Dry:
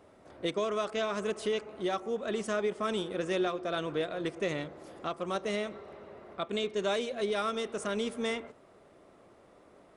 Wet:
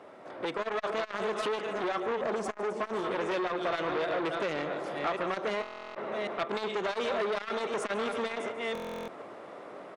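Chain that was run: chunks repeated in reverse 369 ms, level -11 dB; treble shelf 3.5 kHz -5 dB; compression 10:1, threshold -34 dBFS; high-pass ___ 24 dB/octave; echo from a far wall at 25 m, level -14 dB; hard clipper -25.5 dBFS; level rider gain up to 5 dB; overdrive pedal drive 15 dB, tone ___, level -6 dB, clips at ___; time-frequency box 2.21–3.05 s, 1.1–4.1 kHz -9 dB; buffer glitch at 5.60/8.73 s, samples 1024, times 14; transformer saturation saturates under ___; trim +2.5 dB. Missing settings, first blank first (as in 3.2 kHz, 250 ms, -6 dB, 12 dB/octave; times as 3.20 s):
110 Hz, 2.6 kHz, -20.5 dBFS, 1.2 kHz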